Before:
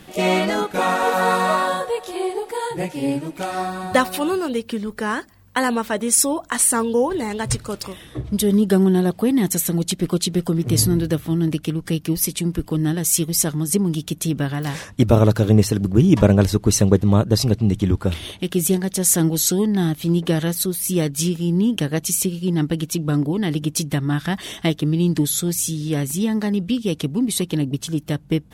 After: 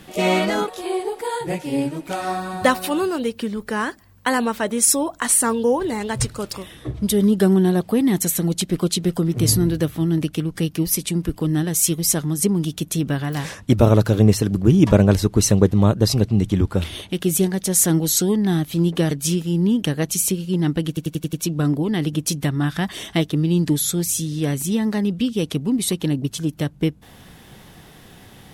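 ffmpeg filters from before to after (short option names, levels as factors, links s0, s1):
-filter_complex "[0:a]asplit=8[s0][s1][s2][s3][s4][s5][s6][s7];[s0]atrim=end=0.682[s8];[s1]atrim=start=1.978:end=20.412[s9];[s2]atrim=start=21.048:end=22.912[s10];[s3]atrim=start=22.818:end=22.912[s11];[s4]atrim=start=22.818:end=22.912[s12];[s5]atrim=start=22.818:end=22.912[s13];[s6]atrim=start=22.818:end=22.912[s14];[s7]atrim=start=22.818[s15];[s8][s9]acrossfade=d=0.004:c1=hsin:c2=hsin[s16];[s16][s10]acrossfade=d=0.004:c1=hsin:c2=hsin[s17];[s17][s11]acrossfade=d=0.004:c1=hsin:c2=hsin[s18];[s18][s12]acrossfade=d=0.004:c1=hsin:c2=hsin[s19];[s19][s13]acrossfade=d=0.004:c1=hsin:c2=hsin[s20];[s20][s14]acrossfade=d=0.004:c1=hsin:c2=hsin[s21];[s21][s15]acrossfade=d=0.004:c1=hsin:c2=hsin"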